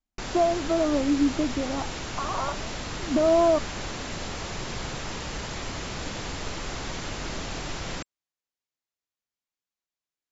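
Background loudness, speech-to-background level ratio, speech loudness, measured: -34.0 LUFS, 8.5 dB, -25.5 LUFS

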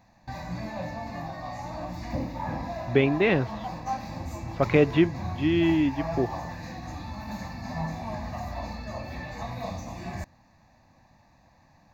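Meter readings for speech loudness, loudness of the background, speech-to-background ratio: -24.5 LUFS, -35.5 LUFS, 11.0 dB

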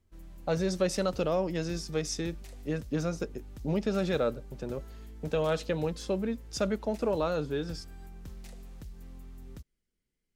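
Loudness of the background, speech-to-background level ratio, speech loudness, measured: -48.5 LUFS, 16.5 dB, -32.0 LUFS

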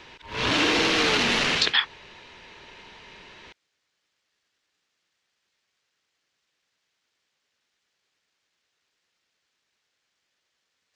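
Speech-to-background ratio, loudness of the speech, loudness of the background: -1.0 dB, -23.0 LUFS, -22.0 LUFS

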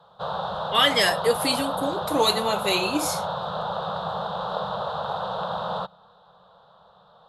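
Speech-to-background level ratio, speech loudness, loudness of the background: 6.5 dB, -23.0 LUFS, -29.5 LUFS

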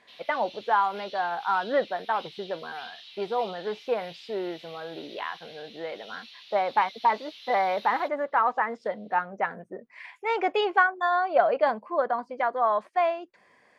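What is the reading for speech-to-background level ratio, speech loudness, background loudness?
18.0 dB, -27.5 LUFS, -45.5 LUFS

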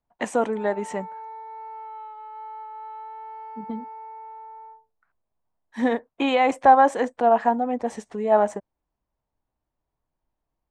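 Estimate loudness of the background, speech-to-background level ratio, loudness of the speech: -39.5 LUFS, 17.5 dB, -22.0 LUFS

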